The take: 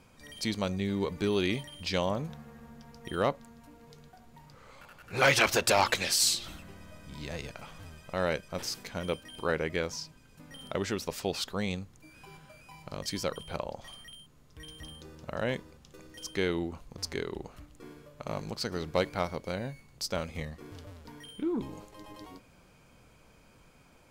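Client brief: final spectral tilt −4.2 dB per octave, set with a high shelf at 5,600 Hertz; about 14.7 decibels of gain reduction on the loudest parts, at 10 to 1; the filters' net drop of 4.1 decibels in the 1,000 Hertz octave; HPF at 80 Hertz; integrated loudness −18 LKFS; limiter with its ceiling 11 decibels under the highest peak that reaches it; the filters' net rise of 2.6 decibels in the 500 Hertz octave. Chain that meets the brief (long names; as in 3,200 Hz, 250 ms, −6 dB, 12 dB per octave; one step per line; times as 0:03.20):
high-pass filter 80 Hz
parametric band 500 Hz +5 dB
parametric band 1,000 Hz −7.5 dB
high-shelf EQ 5,600 Hz −5 dB
downward compressor 10 to 1, threshold −35 dBFS
level +27.5 dB
brickwall limiter −4.5 dBFS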